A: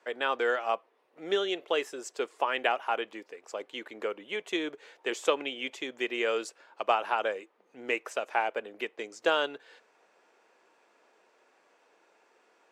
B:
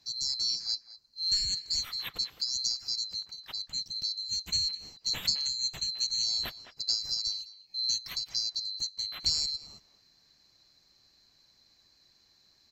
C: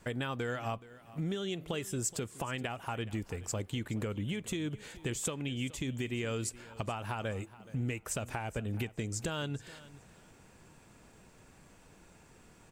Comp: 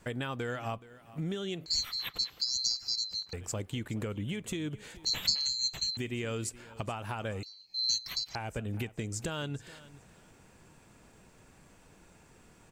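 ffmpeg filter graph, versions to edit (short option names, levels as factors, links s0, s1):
-filter_complex "[1:a]asplit=3[s0][s1][s2];[2:a]asplit=4[s3][s4][s5][s6];[s3]atrim=end=1.662[s7];[s0]atrim=start=1.658:end=3.332[s8];[s4]atrim=start=3.328:end=5.052[s9];[s1]atrim=start=5.048:end=5.972[s10];[s5]atrim=start=5.968:end=7.432[s11];[s2]atrim=start=7.428:end=8.352[s12];[s6]atrim=start=8.348[s13];[s7][s8]acrossfade=d=0.004:c1=hsin:c2=hsin[s14];[s14][s9]acrossfade=d=0.004:c1=hsin:c2=hsin[s15];[s15][s10]acrossfade=d=0.004:c1=hsin:c2=hsin[s16];[s16][s11]acrossfade=d=0.004:c1=hsin:c2=hsin[s17];[s17][s12]acrossfade=d=0.004:c1=hsin:c2=hsin[s18];[s18][s13]acrossfade=d=0.004:c1=hsin:c2=hsin"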